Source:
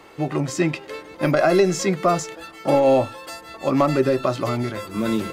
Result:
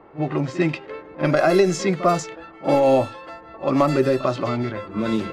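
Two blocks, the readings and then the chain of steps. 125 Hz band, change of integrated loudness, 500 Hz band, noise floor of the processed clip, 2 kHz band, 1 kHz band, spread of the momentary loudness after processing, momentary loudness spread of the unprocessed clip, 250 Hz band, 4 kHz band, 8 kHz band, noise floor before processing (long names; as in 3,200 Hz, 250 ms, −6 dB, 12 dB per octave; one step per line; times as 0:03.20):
0.0 dB, 0.0 dB, 0.0 dB, −44 dBFS, 0.0 dB, 0.0 dB, 13 LU, 13 LU, 0.0 dB, −1.0 dB, −3.5 dB, −43 dBFS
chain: low-pass that shuts in the quiet parts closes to 1,100 Hz, open at −13.5 dBFS
backwards echo 46 ms −15.5 dB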